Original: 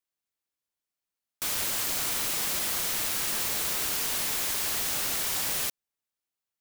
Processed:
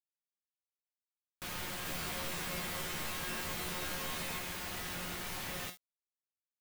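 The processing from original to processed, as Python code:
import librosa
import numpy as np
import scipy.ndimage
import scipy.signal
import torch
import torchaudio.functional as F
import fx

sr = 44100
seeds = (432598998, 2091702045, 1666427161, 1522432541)

y = fx.bass_treble(x, sr, bass_db=7, treble_db=-12)
y = fx.comb_fb(y, sr, f0_hz=180.0, decay_s=0.39, harmonics='all', damping=0.0, mix_pct=80)
y = fx.quant_companded(y, sr, bits=4)
y = fx.doubler(y, sr, ms=13.0, db=-3.0, at=(1.84, 4.39))
y = y * librosa.db_to_amplitude(4.0)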